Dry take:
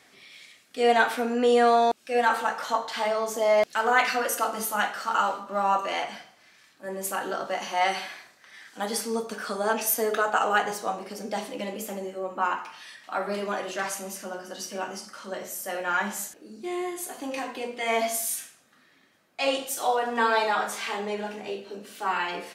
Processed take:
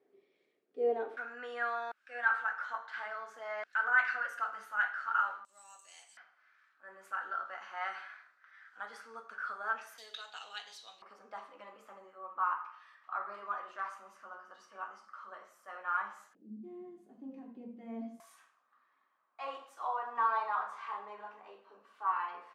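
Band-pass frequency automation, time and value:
band-pass, Q 5.9
400 Hz
from 1.17 s 1500 Hz
from 5.45 s 8000 Hz
from 6.17 s 1400 Hz
from 9.98 s 3800 Hz
from 11.02 s 1200 Hz
from 16.35 s 210 Hz
from 18.2 s 1100 Hz

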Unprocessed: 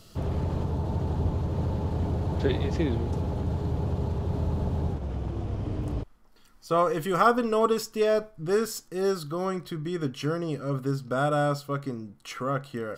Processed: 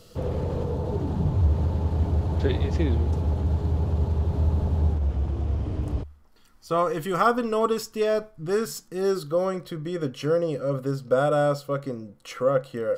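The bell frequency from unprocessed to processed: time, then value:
bell +15 dB 0.23 oct
0.9 s 490 Hz
1.47 s 73 Hz
8.35 s 73 Hz
9.35 s 520 Hz

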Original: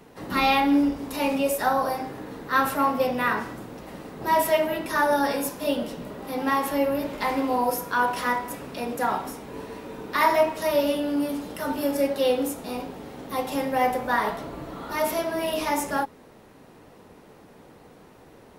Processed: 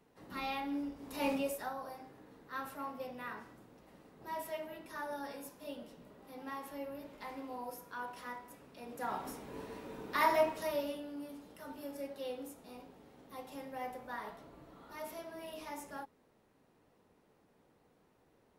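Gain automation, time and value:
0.95 s -18 dB
1.29 s -8 dB
1.75 s -20 dB
8.76 s -20 dB
9.3 s -9 dB
10.49 s -9 dB
11.11 s -19.5 dB

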